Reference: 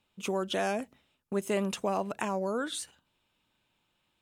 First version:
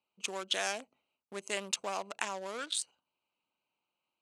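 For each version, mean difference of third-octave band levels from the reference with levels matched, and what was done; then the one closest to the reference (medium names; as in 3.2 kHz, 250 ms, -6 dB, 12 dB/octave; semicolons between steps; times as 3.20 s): 7.0 dB: local Wiener filter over 25 samples; frequency weighting ITU-R 468; trim -3 dB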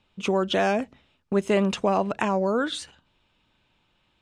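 2.5 dB: low-pass 5.1 kHz 12 dB/octave; bass shelf 74 Hz +8.5 dB; trim +7.5 dB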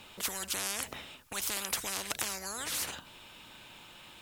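15.0 dB: bass shelf 440 Hz -5.5 dB; spectrum-flattening compressor 10:1; trim +2 dB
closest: second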